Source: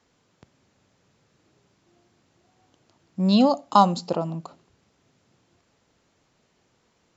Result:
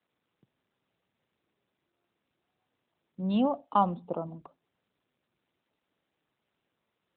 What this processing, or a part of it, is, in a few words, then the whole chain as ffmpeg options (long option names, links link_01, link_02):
mobile call with aggressive noise cancelling: -af "highpass=120,afftdn=noise_reduction=18:noise_floor=-40,volume=-7.5dB" -ar 8000 -c:a libopencore_amrnb -b:a 12200